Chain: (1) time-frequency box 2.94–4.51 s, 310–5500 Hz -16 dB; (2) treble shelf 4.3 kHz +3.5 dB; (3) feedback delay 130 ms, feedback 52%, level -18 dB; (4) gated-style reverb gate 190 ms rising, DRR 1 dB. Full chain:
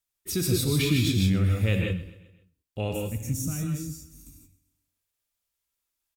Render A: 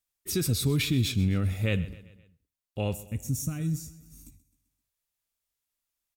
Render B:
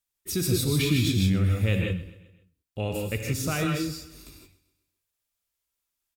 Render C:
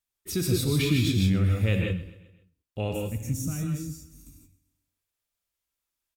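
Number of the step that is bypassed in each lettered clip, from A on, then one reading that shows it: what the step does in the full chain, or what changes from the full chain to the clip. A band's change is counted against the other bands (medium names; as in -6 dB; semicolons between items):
4, momentary loudness spread change -3 LU; 1, 1 kHz band +4.5 dB; 2, 8 kHz band -2.5 dB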